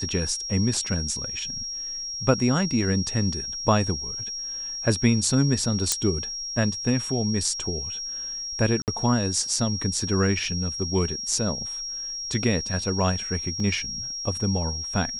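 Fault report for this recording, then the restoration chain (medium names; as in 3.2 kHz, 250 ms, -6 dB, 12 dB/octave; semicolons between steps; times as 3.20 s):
whine 5.6 kHz -30 dBFS
5.92 s: pop -5 dBFS
8.82–8.88 s: dropout 58 ms
13.60 s: dropout 2.4 ms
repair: de-click; band-stop 5.6 kHz, Q 30; interpolate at 8.82 s, 58 ms; interpolate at 13.60 s, 2.4 ms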